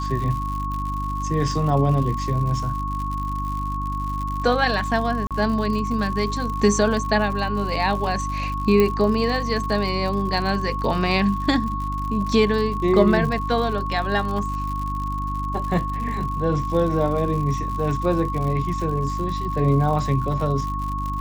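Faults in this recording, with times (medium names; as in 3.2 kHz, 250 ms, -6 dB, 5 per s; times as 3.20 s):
crackle 100 per s -29 dBFS
hum 50 Hz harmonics 6 -28 dBFS
whine 1.1 kHz -27 dBFS
5.27–5.31 s: dropout 37 ms
8.80 s: pop -7 dBFS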